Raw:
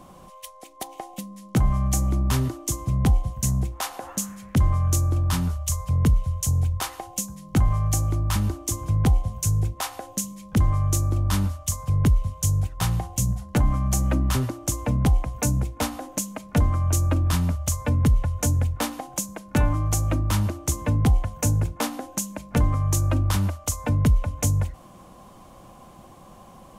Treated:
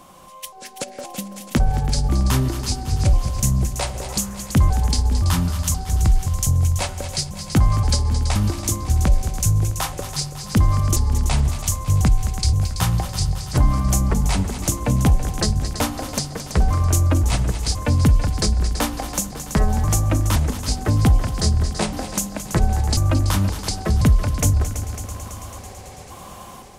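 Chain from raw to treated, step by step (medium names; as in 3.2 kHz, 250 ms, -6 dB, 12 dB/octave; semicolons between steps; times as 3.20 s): pitch shift switched off and on -5.5 st, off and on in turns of 522 ms; level rider gain up to 8 dB; on a send: multi-head delay 110 ms, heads second and third, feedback 61%, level -14 dB; on the sum: tape noise reduction on one side only encoder only; trim -3.5 dB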